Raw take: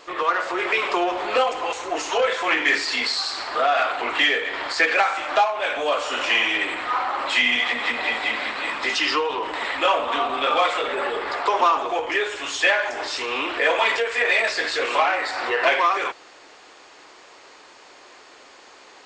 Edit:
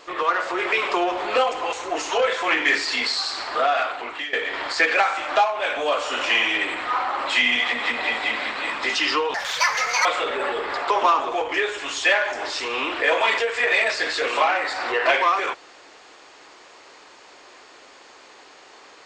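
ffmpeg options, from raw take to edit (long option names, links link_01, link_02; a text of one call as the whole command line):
ffmpeg -i in.wav -filter_complex "[0:a]asplit=4[link_01][link_02][link_03][link_04];[link_01]atrim=end=4.33,asetpts=PTS-STARTPTS,afade=type=out:start_time=3.63:duration=0.7:silence=0.149624[link_05];[link_02]atrim=start=4.33:end=9.344,asetpts=PTS-STARTPTS,afade=type=in:duration=0.004:curve=hsin:silence=0.149624[link_06];[link_03]atrim=start=9.34:end=10.63,asetpts=PTS-STARTPTS,asetrate=79821,aresample=44100,atrim=end_sample=31430,asetpts=PTS-STARTPTS[link_07];[link_04]atrim=start=10.626[link_08];[link_05][link_06]concat=n=2:v=0:a=1[link_09];[link_09][link_07]acrossfade=duration=0.004:curve1=hsin:curve2=hsin[link_10];[link_10][link_08]acrossfade=duration=0.004:curve1=hsin:curve2=hsin" out.wav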